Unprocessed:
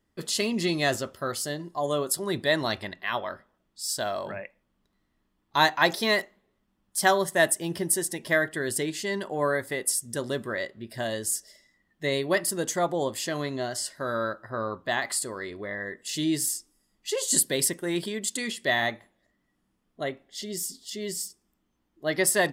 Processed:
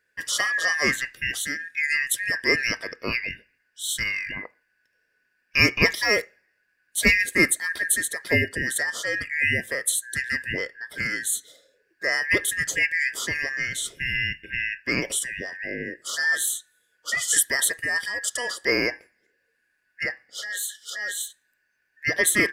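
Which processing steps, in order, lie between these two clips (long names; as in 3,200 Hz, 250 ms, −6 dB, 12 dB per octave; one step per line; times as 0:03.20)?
band-splitting scrambler in four parts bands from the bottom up 2143
level +2.5 dB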